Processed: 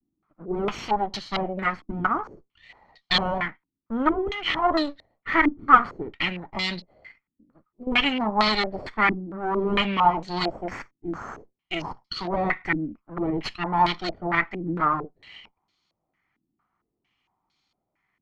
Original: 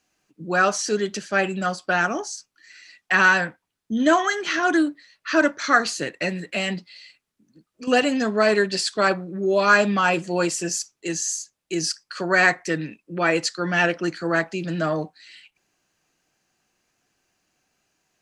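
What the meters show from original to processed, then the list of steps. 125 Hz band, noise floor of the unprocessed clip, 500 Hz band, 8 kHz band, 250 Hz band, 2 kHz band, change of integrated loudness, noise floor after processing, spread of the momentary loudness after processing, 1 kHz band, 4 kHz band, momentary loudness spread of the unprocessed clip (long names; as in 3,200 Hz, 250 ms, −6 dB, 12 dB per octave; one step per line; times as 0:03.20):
−2.5 dB, −80 dBFS, −6.5 dB, below −20 dB, −3.5 dB, −6.5 dB, −3.0 dB, −83 dBFS, 13 LU, +1.0 dB, +0.5 dB, 12 LU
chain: lower of the sound and its delayed copy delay 0.92 ms
pitch vibrato 0.58 Hz 42 cents
low-pass on a step sequencer 4.4 Hz 290–4,100 Hz
level −3.5 dB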